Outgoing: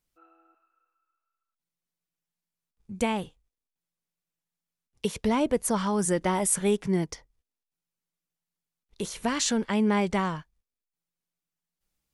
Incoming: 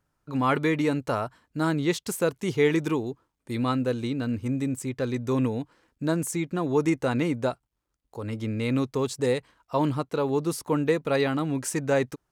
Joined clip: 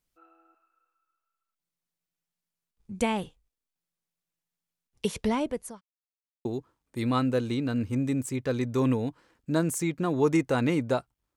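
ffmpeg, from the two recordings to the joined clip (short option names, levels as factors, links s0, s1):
-filter_complex "[0:a]apad=whole_dur=11.36,atrim=end=11.36,asplit=2[s0][s1];[s0]atrim=end=5.81,asetpts=PTS-STARTPTS,afade=t=out:st=5.2:d=0.61[s2];[s1]atrim=start=5.81:end=6.45,asetpts=PTS-STARTPTS,volume=0[s3];[1:a]atrim=start=2.98:end=7.89,asetpts=PTS-STARTPTS,afade=t=in:d=0.004:c=hsin[s4];[s2][s3][s4]concat=n=3:v=0:a=1"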